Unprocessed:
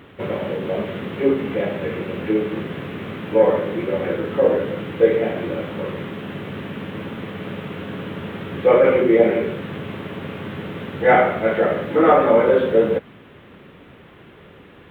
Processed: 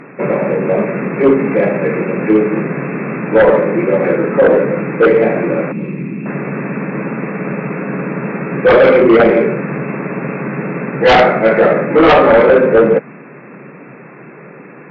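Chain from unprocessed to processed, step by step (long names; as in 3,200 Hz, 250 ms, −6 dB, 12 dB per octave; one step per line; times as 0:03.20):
brick-wall band-pass 120–2,700 Hz
sine wavefolder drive 9 dB, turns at −1 dBFS
0:05.72–0:06.26: flat-topped bell 920 Hz −16 dB 2.4 octaves
level −2.5 dB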